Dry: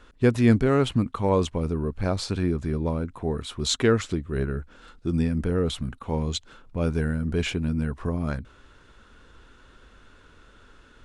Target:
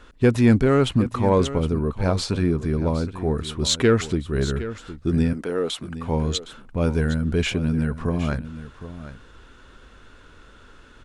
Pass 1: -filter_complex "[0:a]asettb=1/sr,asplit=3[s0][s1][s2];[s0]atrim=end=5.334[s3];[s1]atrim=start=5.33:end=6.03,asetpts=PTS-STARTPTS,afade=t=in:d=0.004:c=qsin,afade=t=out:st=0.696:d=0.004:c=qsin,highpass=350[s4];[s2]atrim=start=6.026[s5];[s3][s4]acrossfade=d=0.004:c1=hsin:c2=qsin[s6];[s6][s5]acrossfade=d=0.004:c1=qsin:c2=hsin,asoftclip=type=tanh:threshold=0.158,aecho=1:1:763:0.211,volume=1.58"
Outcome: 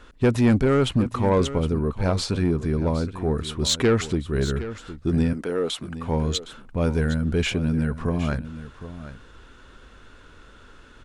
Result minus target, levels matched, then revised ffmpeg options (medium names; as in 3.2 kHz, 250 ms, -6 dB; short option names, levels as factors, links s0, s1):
saturation: distortion +8 dB
-filter_complex "[0:a]asettb=1/sr,asplit=3[s0][s1][s2];[s0]atrim=end=5.334[s3];[s1]atrim=start=5.33:end=6.03,asetpts=PTS-STARTPTS,afade=t=in:d=0.004:c=qsin,afade=t=out:st=0.696:d=0.004:c=qsin,highpass=350[s4];[s2]atrim=start=6.026[s5];[s3][s4]acrossfade=d=0.004:c1=hsin:c2=qsin[s6];[s6][s5]acrossfade=d=0.004:c1=qsin:c2=hsin,asoftclip=type=tanh:threshold=0.316,aecho=1:1:763:0.211,volume=1.58"